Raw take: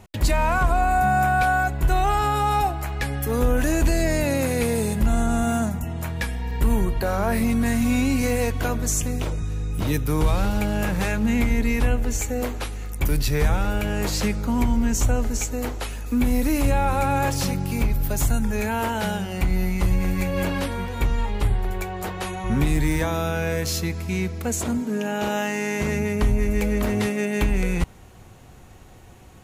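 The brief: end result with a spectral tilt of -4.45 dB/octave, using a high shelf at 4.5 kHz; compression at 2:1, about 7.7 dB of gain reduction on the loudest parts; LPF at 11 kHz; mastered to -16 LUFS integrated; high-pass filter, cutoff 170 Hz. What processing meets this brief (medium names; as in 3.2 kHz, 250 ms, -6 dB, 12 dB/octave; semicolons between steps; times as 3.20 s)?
high-pass 170 Hz; low-pass 11 kHz; treble shelf 4.5 kHz +6.5 dB; compression 2:1, threshold -32 dBFS; trim +15 dB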